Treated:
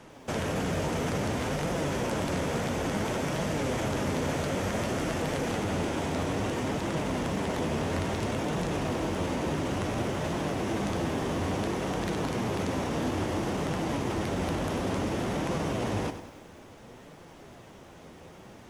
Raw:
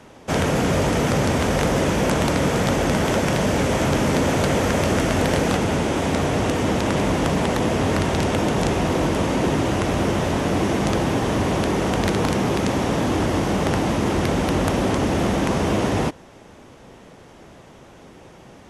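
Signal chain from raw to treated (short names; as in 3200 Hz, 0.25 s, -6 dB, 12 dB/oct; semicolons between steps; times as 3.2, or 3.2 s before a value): limiter -19 dBFS, peak gain reduction 10 dB; flange 0.58 Hz, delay 5.6 ms, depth 7.6 ms, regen +59%; lo-fi delay 96 ms, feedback 55%, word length 9-bit, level -11 dB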